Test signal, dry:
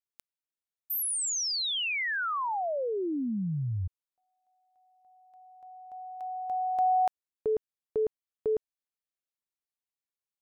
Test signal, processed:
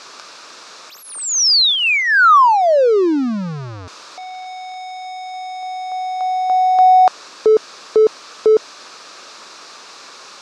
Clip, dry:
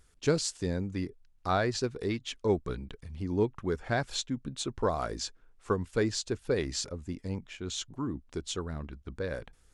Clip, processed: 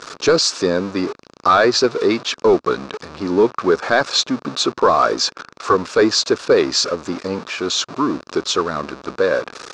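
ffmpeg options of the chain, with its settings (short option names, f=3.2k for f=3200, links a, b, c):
-af "aeval=exprs='val(0)+0.5*0.01*sgn(val(0))':c=same,highpass=370,equalizer=f=770:t=q:w=4:g=-4,equalizer=f=1.2k:t=q:w=4:g=6,equalizer=f=2k:t=q:w=4:g=-8,equalizer=f=3.1k:t=q:w=4:g=-8,lowpass=f=5.6k:w=0.5412,lowpass=f=5.6k:w=1.3066,apsyclip=25dB,volume=-6dB"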